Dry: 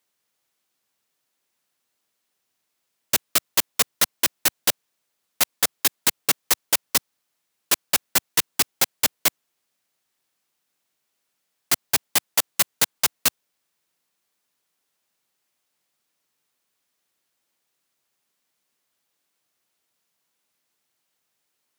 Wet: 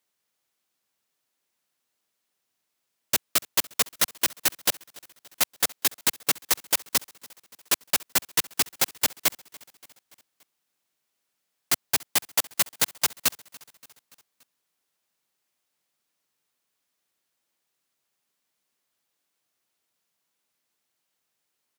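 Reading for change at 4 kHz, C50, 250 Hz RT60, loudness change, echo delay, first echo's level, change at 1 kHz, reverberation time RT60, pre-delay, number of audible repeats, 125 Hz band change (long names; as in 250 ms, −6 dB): −3.0 dB, no reverb audible, no reverb audible, −3.0 dB, 287 ms, −23.0 dB, −3.0 dB, no reverb audible, no reverb audible, 3, −3.0 dB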